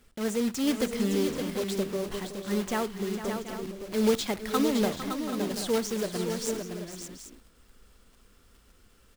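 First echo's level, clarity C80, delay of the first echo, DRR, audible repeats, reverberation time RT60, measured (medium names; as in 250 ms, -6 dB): -20.0 dB, no reverb, 60 ms, no reverb, 5, no reverb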